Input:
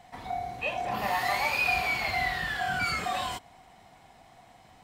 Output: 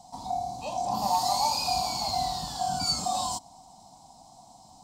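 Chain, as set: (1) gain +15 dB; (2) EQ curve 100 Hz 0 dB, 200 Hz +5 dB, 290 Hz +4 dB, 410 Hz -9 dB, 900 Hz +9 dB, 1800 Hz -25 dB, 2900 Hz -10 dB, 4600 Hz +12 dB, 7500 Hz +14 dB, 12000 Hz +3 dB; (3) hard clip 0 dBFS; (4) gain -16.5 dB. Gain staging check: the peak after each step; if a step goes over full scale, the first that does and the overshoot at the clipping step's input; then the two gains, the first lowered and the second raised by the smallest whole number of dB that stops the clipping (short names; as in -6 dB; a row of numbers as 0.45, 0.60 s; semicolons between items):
-0.5, +3.5, 0.0, -16.5 dBFS; step 2, 3.5 dB; step 1 +11 dB, step 4 -12.5 dB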